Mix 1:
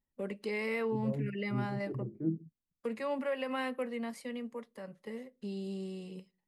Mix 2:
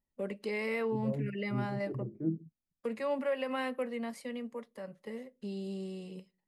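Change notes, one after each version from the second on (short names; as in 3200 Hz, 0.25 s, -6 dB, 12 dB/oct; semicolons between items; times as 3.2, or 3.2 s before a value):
master: add bell 600 Hz +3 dB 0.41 oct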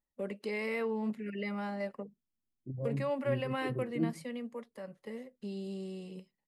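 second voice: entry +1.75 s; reverb: off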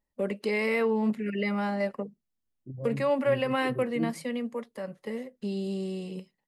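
first voice +8.0 dB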